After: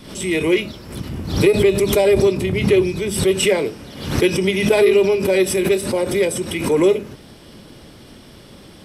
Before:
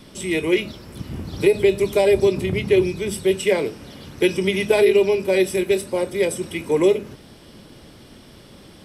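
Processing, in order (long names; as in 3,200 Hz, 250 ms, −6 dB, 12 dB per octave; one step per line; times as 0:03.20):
in parallel at −9 dB: soft clipping −17 dBFS, distortion −10 dB
on the sum: background raised ahead of every attack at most 80 dB per second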